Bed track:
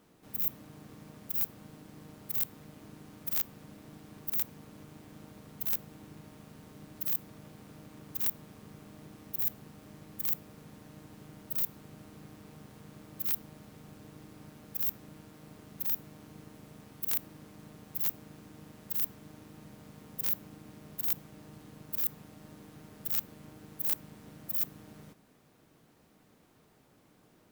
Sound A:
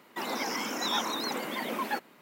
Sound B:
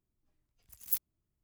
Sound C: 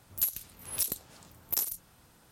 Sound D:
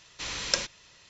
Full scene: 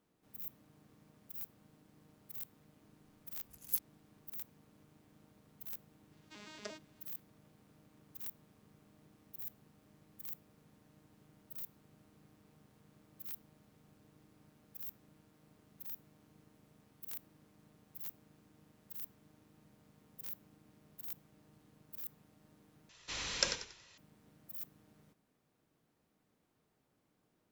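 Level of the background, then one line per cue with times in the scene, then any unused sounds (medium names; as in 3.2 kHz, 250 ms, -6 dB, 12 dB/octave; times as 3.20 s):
bed track -14 dB
2.81 s: add B -3.5 dB
6.11 s: add D -17.5 dB + vocoder on a broken chord bare fifth, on G#3, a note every 117 ms
22.89 s: replace with D -6 dB + frequency-shifting echo 93 ms, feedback 31%, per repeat -54 Hz, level -9 dB
not used: A, C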